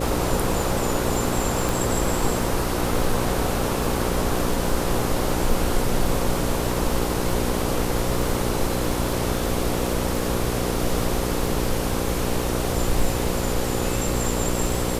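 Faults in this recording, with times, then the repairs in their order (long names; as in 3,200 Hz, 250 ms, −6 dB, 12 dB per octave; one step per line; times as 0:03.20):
mains buzz 60 Hz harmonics 9 −27 dBFS
surface crackle 31 per second −27 dBFS
0:01.69: click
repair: click removal
hum removal 60 Hz, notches 9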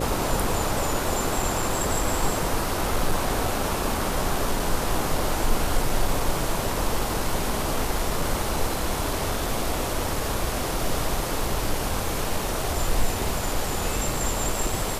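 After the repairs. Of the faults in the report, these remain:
none of them is left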